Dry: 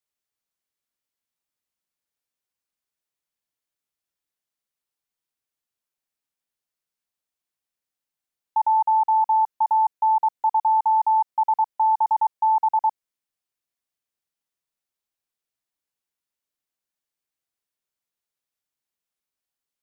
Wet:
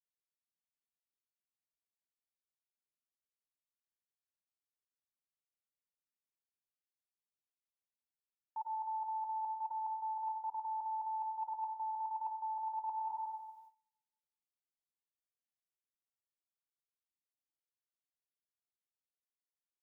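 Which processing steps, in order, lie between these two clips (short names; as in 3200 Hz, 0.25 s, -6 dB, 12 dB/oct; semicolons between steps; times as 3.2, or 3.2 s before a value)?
tilt shelf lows +3 dB, about 640 Hz; on a send: echo 0.103 s -15 dB; on the sum: plate-style reverb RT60 1.3 s, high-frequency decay 0.95×, pre-delay 80 ms, DRR 6 dB; gate with hold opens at -51 dBFS; reverse; compressor 16:1, threshold -37 dBFS, peak gain reduction 23 dB; reverse; notch 840 Hz, Q 12; gain +2.5 dB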